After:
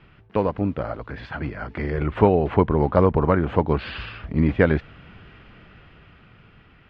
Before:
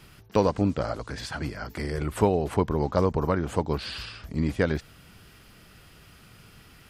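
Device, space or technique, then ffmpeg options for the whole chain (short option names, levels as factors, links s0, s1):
action camera in a waterproof case: -af "lowpass=f=2900:w=0.5412,lowpass=f=2900:w=1.3066,dynaudnorm=f=350:g=9:m=3.76" -ar 48000 -c:a aac -b:a 96k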